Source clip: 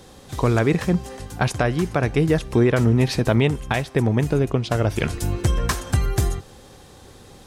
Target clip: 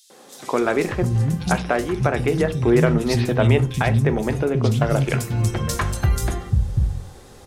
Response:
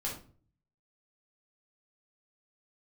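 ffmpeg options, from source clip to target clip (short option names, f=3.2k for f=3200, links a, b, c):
-filter_complex "[0:a]acrossover=split=220|3500[a][b][c];[b]adelay=100[d];[a]adelay=590[e];[e][d][c]amix=inputs=3:normalize=0,asplit=2[f][g];[1:a]atrim=start_sample=2205,asetrate=70560,aresample=44100[h];[g][h]afir=irnorm=-1:irlink=0,volume=-7dB[i];[f][i]amix=inputs=2:normalize=0"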